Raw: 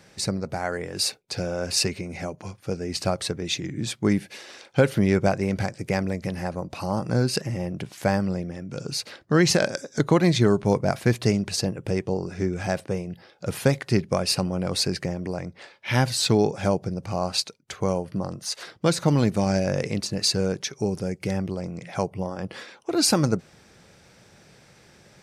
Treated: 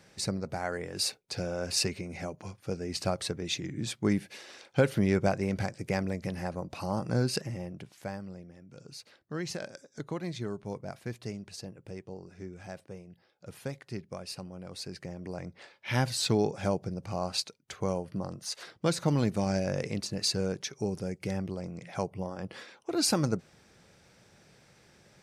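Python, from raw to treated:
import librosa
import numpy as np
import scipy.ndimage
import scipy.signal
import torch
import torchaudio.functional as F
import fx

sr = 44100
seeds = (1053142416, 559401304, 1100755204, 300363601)

y = fx.gain(x, sr, db=fx.line((7.33, -5.5), (8.19, -17.0), (14.78, -17.0), (15.47, -6.5)))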